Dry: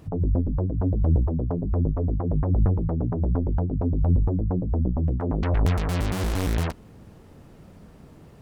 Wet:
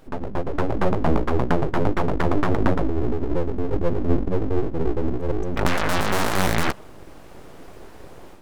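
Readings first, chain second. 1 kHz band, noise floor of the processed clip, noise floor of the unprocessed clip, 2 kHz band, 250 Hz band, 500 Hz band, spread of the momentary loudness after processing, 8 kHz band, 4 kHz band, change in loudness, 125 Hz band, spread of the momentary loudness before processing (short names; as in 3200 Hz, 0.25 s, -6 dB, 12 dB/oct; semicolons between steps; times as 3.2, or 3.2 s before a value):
+10.0 dB, -42 dBFS, -49 dBFS, +12.0 dB, +2.5 dB, +7.5 dB, 5 LU, n/a, +9.0 dB, +0.5 dB, -4.5 dB, 4 LU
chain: spectral delete 2.86–5.57, 300–5800 Hz; HPF 120 Hz 24 dB/oct; dynamic EQ 1000 Hz, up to +5 dB, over -44 dBFS, Q 0.76; AGC gain up to 9 dB; full-wave rectifier; gain +1 dB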